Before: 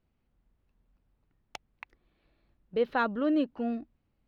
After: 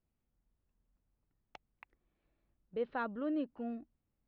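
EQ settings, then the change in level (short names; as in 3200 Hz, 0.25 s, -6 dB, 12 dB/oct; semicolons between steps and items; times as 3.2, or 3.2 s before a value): air absorption 110 m; high shelf 4400 Hz -8.5 dB; -8.5 dB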